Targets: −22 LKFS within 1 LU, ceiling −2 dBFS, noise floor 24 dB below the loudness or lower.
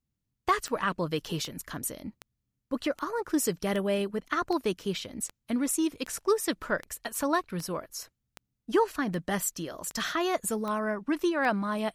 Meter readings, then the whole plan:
number of clicks 15; integrated loudness −30.5 LKFS; sample peak −13.5 dBFS; target loudness −22.0 LKFS
→ click removal
level +8.5 dB

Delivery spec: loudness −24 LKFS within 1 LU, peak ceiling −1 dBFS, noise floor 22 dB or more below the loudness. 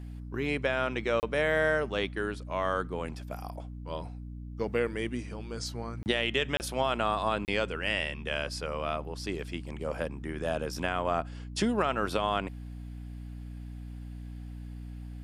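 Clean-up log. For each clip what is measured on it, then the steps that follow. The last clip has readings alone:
number of dropouts 4; longest dropout 29 ms; mains hum 60 Hz; hum harmonics up to 300 Hz; level of the hum −39 dBFS; integrated loudness −31.5 LKFS; sample peak −13.0 dBFS; target loudness −24.0 LKFS
→ repair the gap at 0:01.20/0:06.03/0:06.57/0:07.45, 29 ms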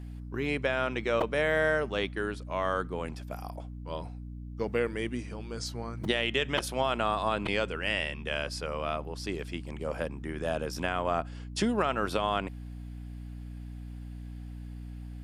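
number of dropouts 0; mains hum 60 Hz; hum harmonics up to 300 Hz; level of the hum −39 dBFS
→ mains-hum notches 60/120/180/240/300 Hz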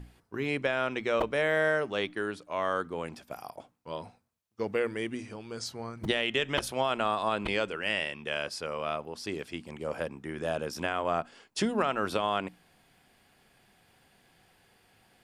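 mains hum none found; integrated loudness −31.5 LKFS; sample peak −12.5 dBFS; target loudness −24.0 LKFS
→ level +7.5 dB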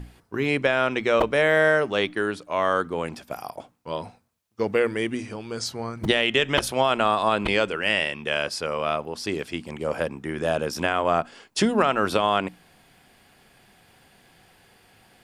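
integrated loudness −24.0 LKFS; sample peak −5.0 dBFS; background noise floor −58 dBFS

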